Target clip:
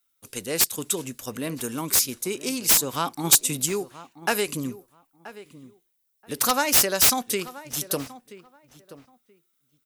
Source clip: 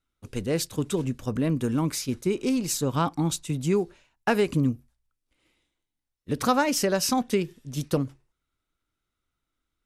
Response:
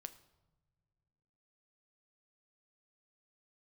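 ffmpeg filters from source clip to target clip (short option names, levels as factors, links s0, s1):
-filter_complex "[0:a]aemphasis=mode=production:type=riaa,aeval=exprs='(mod(2.99*val(0)+1,2)-1)/2.99':c=same,asplit=3[s0][s1][s2];[s0]afade=t=out:st=3.23:d=0.02[s3];[s1]acontrast=30,afade=t=in:st=3.23:d=0.02,afade=t=out:st=3.65:d=0.02[s4];[s2]afade=t=in:st=3.65:d=0.02[s5];[s3][s4][s5]amix=inputs=3:normalize=0,asplit=2[s6][s7];[s7]adelay=979,lowpass=f=2000:p=1,volume=0.158,asplit=2[s8][s9];[s9]adelay=979,lowpass=f=2000:p=1,volume=0.19[s10];[s6][s8][s10]amix=inputs=3:normalize=0"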